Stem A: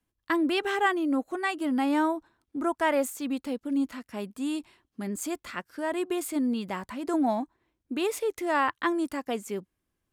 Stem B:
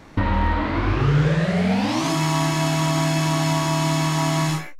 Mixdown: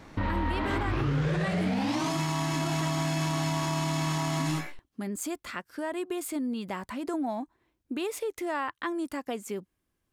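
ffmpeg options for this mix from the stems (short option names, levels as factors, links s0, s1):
-filter_complex "[0:a]acompressor=threshold=0.0224:ratio=2.5,volume=1.19,asplit=3[s0][s1][s2];[s0]atrim=end=2.85,asetpts=PTS-STARTPTS,afade=t=out:st=2.846:d=0.004:c=hsin[s3];[s1]atrim=start=2.85:end=4.35,asetpts=PTS-STARTPTS,volume=0[s4];[s2]atrim=start=4.35,asetpts=PTS-STARTPTS,afade=t=in:d=0.004:c=hsin[s5];[s3][s4][s5]concat=n=3:v=0:a=1[s6];[1:a]volume=0.631[s7];[s6][s7]amix=inputs=2:normalize=0,alimiter=limit=0.0944:level=0:latency=1:release=46"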